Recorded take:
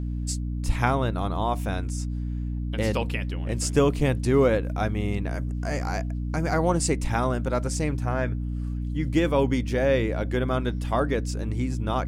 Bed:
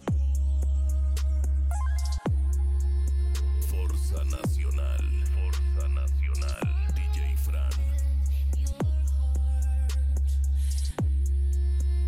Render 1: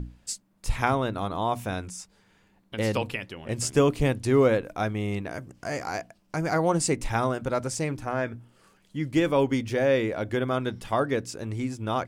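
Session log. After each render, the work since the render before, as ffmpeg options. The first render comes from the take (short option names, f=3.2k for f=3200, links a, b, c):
-af "bandreject=f=60:t=h:w=6,bandreject=f=120:t=h:w=6,bandreject=f=180:t=h:w=6,bandreject=f=240:t=h:w=6,bandreject=f=300:t=h:w=6"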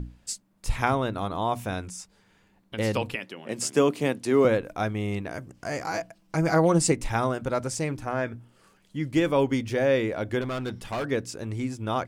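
-filter_complex "[0:a]asettb=1/sr,asplit=3[a][b][c];[a]atrim=end=3.154[d];[b]atrim=start=3.15:end=4.45,asetpts=PTS-STARTPTS,afade=t=in:d=0.004:c=qsin,afade=t=out:st=1.296:d=0.004:c=qsin,highpass=f=170:w=0.5412,highpass=f=170:w=1.3066[e];[c]atrim=start=4.446[f];[d][e]acrossfade=d=0.004:c1=hsin:c2=qsin[g];[g][f]acrossfade=d=0.004:c1=qsin:c2=hsin,asettb=1/sr,asplit=3[h][i][j];[h]atrim=end=5.844[k];[i]atrim=start=5.84:end=6.92,asetpts=PTS-STARTPTS,afade=t=in:d=0.004:c=qsin,afade=t=out:st=1.076:d=0.004:c=qsin,aecho=1:1:6.1:0.73,atrim=end_sample=47628[l];[j]atrim=start=6.916[m];[k][l]acrossfade=d=0.004:c1=hsin:c2=qsin[n];[n][m]acrossfade=d=0.004:c1=qsin:c2=hsin,asettb=1/sr,asplit=3[o][p][q];[o]atrim=end=10.414[r];[p]atrim=start=10.41:end=11.05,asetpts=PTS-STARTPTS,afade=t=in:d=0.004:c=qsin,afade=t=out:st=0.636:d=0.004:c=qsin,asoftclip=type=hard:threshold=-26.5dB[s];[q]atrim=start=11.046[t];[r][s]acrossfade=d=0.004:c1=hsin:c2=qsin[u];[u][t]acrossfade=d=0.004:c1=qsin:c2=hsin"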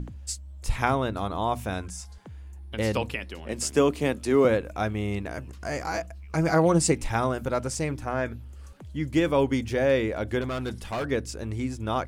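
-filter_complex "[1:a]volume=-17.5dB[a];[0:a][a]amix=inputs=2:normalize=0"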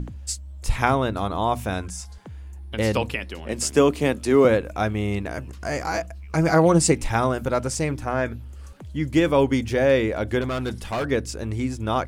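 -af "volume=4dB"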